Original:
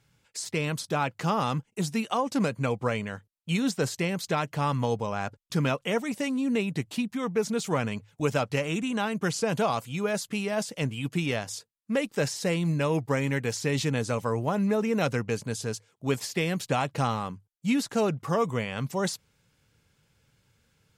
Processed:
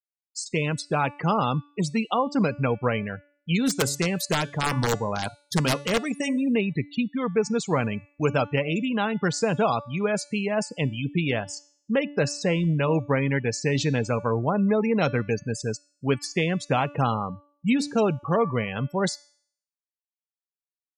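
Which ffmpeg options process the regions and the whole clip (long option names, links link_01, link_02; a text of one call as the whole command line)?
ffmpeg -i in.wav -filter_complex "[0:a]asettb=1/sr,asplit=3[link_01][link_02][link_03];[link_01]atrim=end=3.594[link_04];[link_02]atrim=start=3.59:end=6.47,asetpts=PTS-STARTPTS,afade=type=in:duration=0.004:curve=qsin,afade=type=out:start_time=2.876:duration=0.004:curve=qsin,highshelf=frequency=7700:gain=11,bandreject=frequency=141.2:width_type=h:width=4,bandreject=frequency=282.4:width_type=h:width=4,bandreject=frequency=423.6:width_type=h:width=4,bandreject=frequency=564.8:width_type=h:width=4,bandreject=frequency=706:width_type=h:width=4,bandreject=frequency=847.2:width_type=h:width=4,bandreject=frequency=988.4:width_type=h:width=4,bandreject=frequency=1129.6:width_type=h:width=4,bandreject=frequency=1270.8:width_type=h:width=4,bandreject=frequency=1412:width_type=h:width=4,bandreject=frequency=1553.2:width_type=h:width=4,bandreject=frequency=1694.4:width_type=h:width=4,bandreject=frequency=1835.6:width_type=h:width=4,bandreject=frequency=1976.8:width_type=h:width=4,bandreject=frequency=2118:width_type=h:width=4,bandreject=frequency=2259.2:width_type=h:width=4,bandreject=frequency=2400.4:width_type=h:width=4,bandreject=frequency=2541.6:width_type=h:width=4,bandreject=frequency=2682.8:width_type=h:width=4,bandreject=frequency=2824:width_type=h:width=4,bandreject=frequency=2965.2:width_type=h:width=4,bandreject=frequency=3106.4:width_type=h:width=4,bandreject=frequency=3247.6:width_type=h:width=4,bandreject=frequency=3388.8:width_type=h:width=4,bandreject=frequency=3530:width_type=h:width=4,bandreject=frequency=3671.2:width_type=h:width=4,bandreject=frequency=3812.4:width_type=h:width=4,bandreject=frequency=3953.6:width_type=h:width=4,bandreject=frequency=4094.8:width_type=h:width=4,bandreject=frequency=4236:width_type=h:width=4,bandreject=frequency=4377.2:width_type=h:width=4,bandreject=frequency=4518.4:width_type=h:width=4,aeval=exprs='(mod(7.5*val(0)+1,2)-1)/7.5':channel_layout=same[link_05];[link_03]atrim=start=6.466[link_06];[link_04][link_05]acrossfade=duration=0.004:curve1=hsin:curve2=qsin[link_07];[link_07][link_06]acrossfade=duration=0.004:curve1=qsin:curve2=hsin,afftfilt=real='re*gte(hypot(re,im),0.0224)':imag='im*gte(hypot(re,im),0.0224)':win_size=1024:overlap=0.75,bandreject=frequency=289.6:width_type=h:width=4,bandreject=frequency=579.2:width_type=h:width=4,bandreject=frequency=868.8:width_type=h:width=4,bandreject=frequency=1158.4:width_type=h:width=4,bandreject=frequency=1448:width_type=h:width=4,bandreject=frequency=1737.6:width_type=h:width=4,bandreject=frequency=2027.2:width_type=h:width=4,bandreject=frequency=2316.8:width_type=h:width=4,bandreject=frequency=2606.4:width_type=h:width=4,bandreject=frequency=2896:width_type=h:width=4,bandreject=frequency=3185.6:width_type=h:width=4,bandreject=frequency=3475.2:width_type=h:width=4,bandreject=frequency=3764.8:width_type=h:width=4,bandreject=frequency=4054.4:width_type=h:width=4,bandreject=frequency=4344:width_type=h:width=4,bandreject=frequency=4633.6:width_type=h:width=4,bandreject=frequency=4923.2:width_type=h:width=4,bandreject=frequency=5212.8:width_type=h:width=4,bandreject=frequency=5502.4:width_type=h:width=4,bandreject=frequency=5792:width_type=h:width=4,bandreject=frequency=6081.6:width_type=h:width=4,bandreject=frequency=6371.2:width_type=h:width=4,bandreject=frequency=6660.8:width_type=h:width=4,bandreject=frequency=6950.4:width_type=h:width=4,bandreject=frequency=7240:width_type=h:width=4,bandreject=frequency=7529.6:width_type=h:width=4,bandreject=frequency=7819.2:width_type=h:width=4,bandreject=frequency=8108.8:width_type=h:width=4,bandreject=frequency=8398.4:width_type=h:width=4,bandreject=frequency=8688:width_type=h:width=4,bandreject=frequency=8977.6:width_type=h:width=4,bandreject=frequency=9267.2:width_type=h:width=4,bandreject=frequency=9556.8:width_type=h:width=4,bandreject=frequency=9846.4:width_type=h:width=4,bandreject=frequency=10136:width_type=h:width=4,volume=3.5dB" out.wav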